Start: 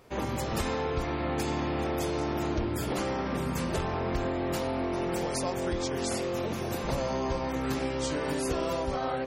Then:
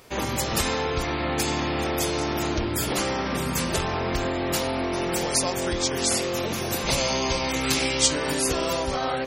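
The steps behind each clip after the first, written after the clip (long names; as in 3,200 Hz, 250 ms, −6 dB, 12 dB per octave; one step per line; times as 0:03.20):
gain on a spectral selection 0:06.87–0:08.07, 2,000–11,000 Hz +6 dB
high-shelf EQ 2,000 Hz +10.5 dB
level +3 dB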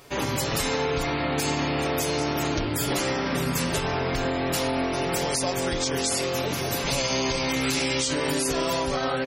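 comb filter 7.1 ms, depth 49%
brickwall limiter −15.5 dBFS, peak gain reduction 11 dB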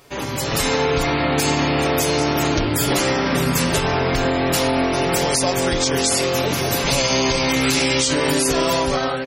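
automatic gain control gain up to 7 dB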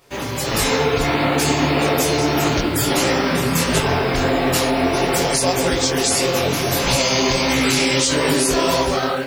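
in parallel at −3 dB: bit reduction 6 bits
on the sum: micro pitch shift up and down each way 55 cents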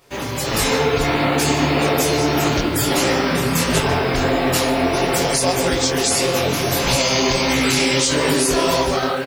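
single-tap delay 150 ms −18 dB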